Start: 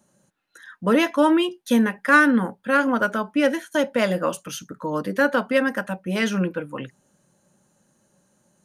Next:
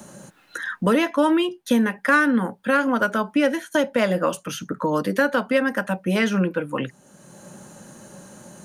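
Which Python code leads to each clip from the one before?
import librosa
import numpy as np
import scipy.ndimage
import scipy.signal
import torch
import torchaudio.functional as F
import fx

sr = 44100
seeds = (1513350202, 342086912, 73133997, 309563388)

y = fx.band_squash(x, sr, depth_pct=70)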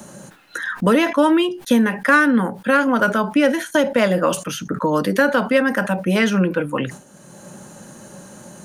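y = fx.sustainer(x, sr, db_per_s=130.0)
y = F.gain(torch.from_numpy(y), 3.5).numpy()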